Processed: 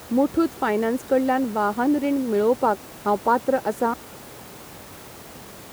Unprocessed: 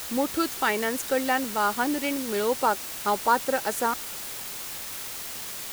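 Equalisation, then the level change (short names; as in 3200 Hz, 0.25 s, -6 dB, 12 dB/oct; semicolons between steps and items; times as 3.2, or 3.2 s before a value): HPF 59 Hz; tilt shelf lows +9.5 dB, about 1300 Hz; -1.0 dB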